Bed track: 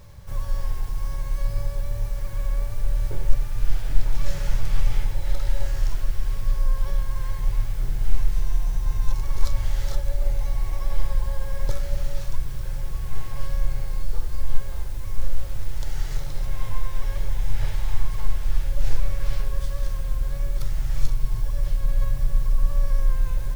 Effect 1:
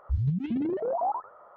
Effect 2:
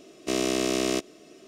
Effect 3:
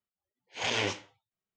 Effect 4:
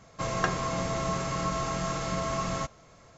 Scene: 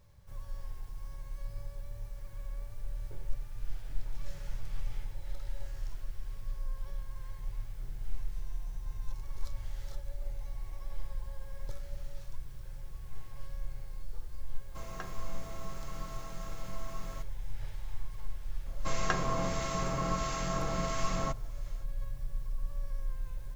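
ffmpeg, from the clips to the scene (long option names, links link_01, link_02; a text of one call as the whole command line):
ffmpeg -i bed.wav -i cue0.wav -i cue1.wav -i cue2.wav -i cue3.wav -filter_complex "[4:a]asplit=2[link_01][link_02];[0:a]volume=-15.5dB[link_03];[link_01]acrusher=bits=6:mix=0:aa=0.000001[link_04];[link_02]acrossover=split=1400[link_05][link_06];[link_05]aeval=exprs='val(0)*(1-0.5/2+0.5/2*cos(2*PI*1.5*n/s))':channel_layout=same[link_07];[link_06]aeval=exprs='val(0)*(1-0.5/2-0.5/2*cos(2*PI*1.5*n/s))':channel_layout=same[link_08];[link_07][link_08]amix=inputs=2:normalize=0[link_09];[link_04]atrim=end=3.17,asetpts=PTS-STARTPTS,volume=-16dB,afade=type=in:duration=0.004:curve=hsin,afade=type=out:start_time=3.166:duration=0.004:curve=hsin,adelay=14560[link_10];[link_09]atrim=end=3.17,asetpts=PTS-STARTPTS,volume=-1dB,afade=type=in:duration=0.004:curve=hsin,afade=type=out:start_time=3.166:duration=0.004:curve=hsin,adelay=18660[link_11];[link_03][link_10][link_11]amix=inputs=3:normalize=0" out.wav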